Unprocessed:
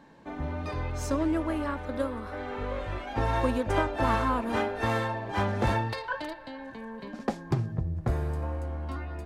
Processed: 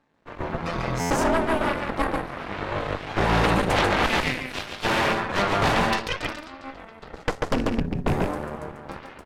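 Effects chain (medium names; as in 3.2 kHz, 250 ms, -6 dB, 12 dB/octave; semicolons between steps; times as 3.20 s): rattle on loud lows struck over -24 dBFS, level -29 dBFS; 4.06–4.85 s: high-pass 1.2 kHz 12 dB/octave; delay 141 ms -3 dB; on a send at -14 dB: reverberation, pre-delay 5 ms; on the sum: Chebyshev shaper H 3 -11 dB, 8 -7 dB, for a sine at -10 dBFS; buffer glitch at 1.00 s, samples 512, times 8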